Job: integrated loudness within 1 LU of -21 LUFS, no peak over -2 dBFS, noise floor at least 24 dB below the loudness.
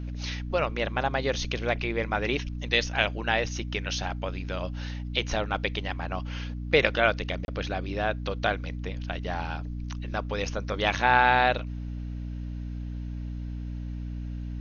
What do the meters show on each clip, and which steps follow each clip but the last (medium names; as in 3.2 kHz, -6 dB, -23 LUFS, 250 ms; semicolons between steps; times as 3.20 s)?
dropouts 1; longest dropout 31 ms; hum 60 Hz; highest harmonic 300 Hz; hum level -32 dBFS; loudness -28.5 LUFS; peak level -5.5 dBFS; loudness target -21.0 LUFS
-> interpolate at 7.45 s, 31 ms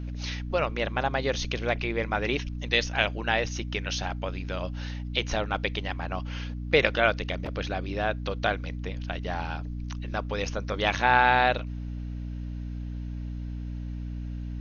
dropouts 0; hum 60 Hz; highest harmonic 300 Hz; hum level -32 dBFS
-> hum notches 60/120/180/240/300 Hz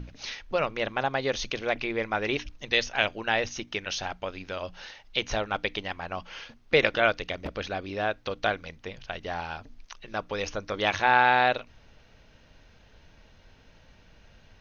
hum not found; loudness -28.0 LUFS; peak level -6.0 dBFS; loudness target -21.0 LUFS
-> trim +7 dB; peak limiter -2 dBFS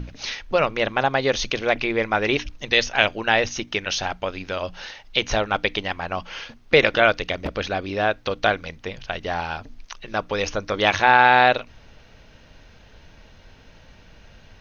loudness -21.5 LUFS; peak level -2.0 dBFS; noise floor -50 dBFS